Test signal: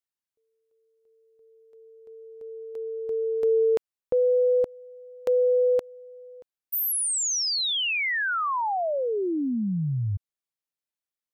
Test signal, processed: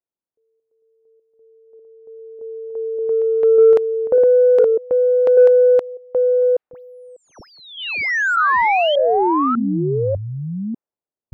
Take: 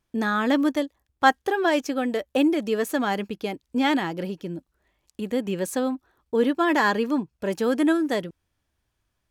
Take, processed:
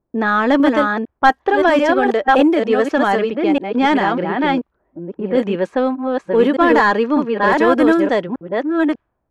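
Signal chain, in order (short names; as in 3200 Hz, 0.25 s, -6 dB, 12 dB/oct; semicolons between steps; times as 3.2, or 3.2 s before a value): reverse delay 0.597 s, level -3 dB; overdrive pedal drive 14 dB, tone 1100 Hz, clips at -4.5 dBFS; low-pass opened by the level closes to 540 Hz, open at -15 dBFS; gain +5.5 dB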